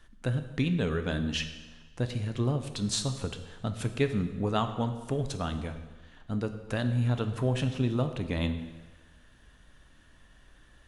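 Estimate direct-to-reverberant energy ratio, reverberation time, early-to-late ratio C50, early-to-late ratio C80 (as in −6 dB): 7.5 dB, 1.3 s, 10.0 dB, 11.5 dB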